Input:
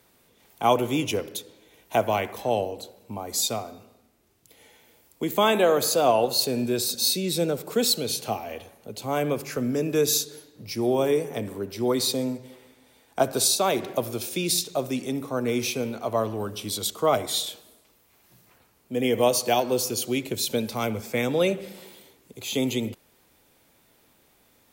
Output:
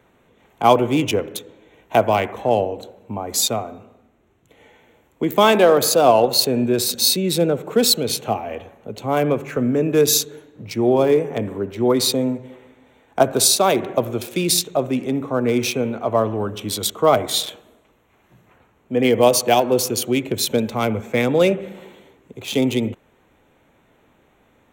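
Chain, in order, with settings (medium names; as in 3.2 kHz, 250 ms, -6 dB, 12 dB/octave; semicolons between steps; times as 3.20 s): local Wiener filter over 9 samples; 17.43–19.10 s: dynamic bell 1.3 kHz, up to +4 dB, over -46 dBFS, Q 0.76; trim +7 dB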